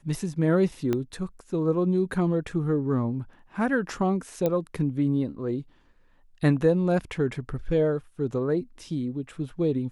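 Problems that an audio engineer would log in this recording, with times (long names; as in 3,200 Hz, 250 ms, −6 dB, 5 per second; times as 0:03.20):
0:00.93: click −14 dBFS
0:04.46: click −13 dBFS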